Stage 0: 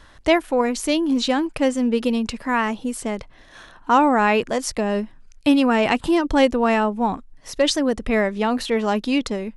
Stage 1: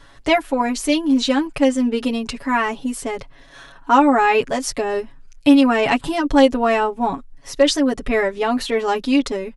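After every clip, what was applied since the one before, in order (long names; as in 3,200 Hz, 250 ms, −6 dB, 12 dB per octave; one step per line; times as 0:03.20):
comb filter 7.2 ms, depth 96%
level −1 dB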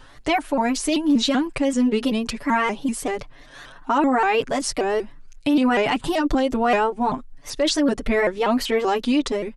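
brickwall limiter −11.5 dBFS, peak gain reduction 10 dB
pitch modulation by a square or saw wave saw up 5.2 Hz, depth 160 cents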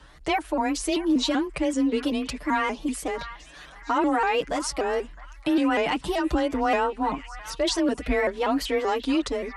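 frequency shifter +25 Hz
echo through a band-pass that steps 661 ms, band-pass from 1,400 Hz, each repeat 0.7 octaves, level −11 dB
level −4 dB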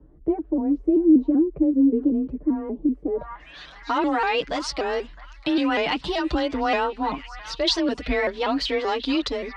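low-pass filter sweep 350 Hz → 4,300 Hz, 0:03.10–0:03.60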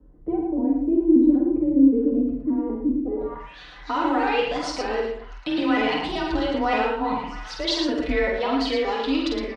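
multi-tap delay 48/112/165 ms −4/−5/−19.5 dB
convolution reverb, pre-delay 4 ms, DRR 3 dB
level −4.5 dB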